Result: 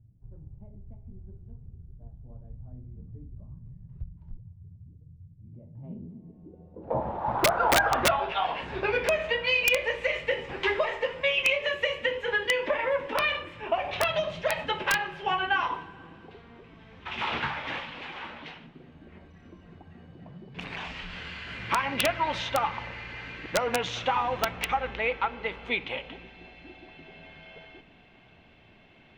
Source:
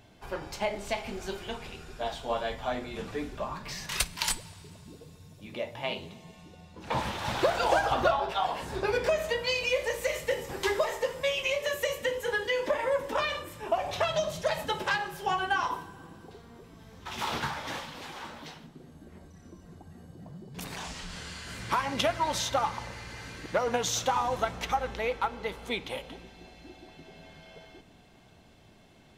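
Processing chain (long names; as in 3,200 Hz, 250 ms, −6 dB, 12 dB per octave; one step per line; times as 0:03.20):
low-pass filter sweep 110 Hz → 2,600 Hz, 0:05.40–0:08.25
wrap-around overflow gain 13.5 dB
mains-hum notches 50/100/150/200 Hz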